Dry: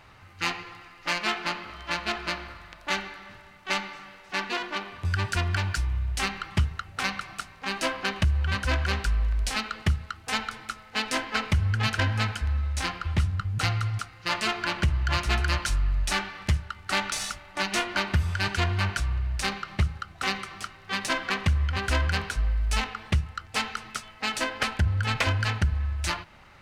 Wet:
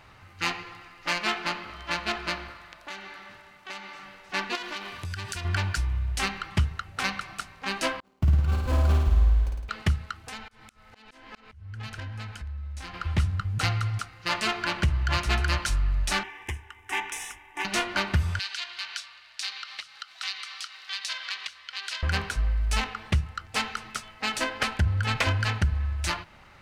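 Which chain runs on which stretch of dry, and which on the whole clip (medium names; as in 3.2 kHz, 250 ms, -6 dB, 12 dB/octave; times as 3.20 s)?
2.50–4.03 s: bass shelf 150 Hz -10.5 dB + compression 3:1, threshold -38 dBFS
4.55–5.45 s: treble shelf 2.7 kHz +10.5 dB + compression, threshold -31 dBFS
8.00–9.69 s: median filter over 25 samples + gate -29 dBFS, range -32 dB + flutter echo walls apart 9.2 m, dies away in 1.1 s
10.24–12.94 s: bass shelf 77 Hz +10 dB + compression 3:1, threshold -39 dBFS + slow attack 287 ms
16.23–17.65 s: bass shelf 150 Hz -11 dB + static phaser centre 890 Hz, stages 8
18.39–22.03 s: peaking EQ 4.2 kHz +14.5 dB 1.6 oct + compression 2:1, threshold -38 dBFS + high-pass 1.1 kHz
whole clip: none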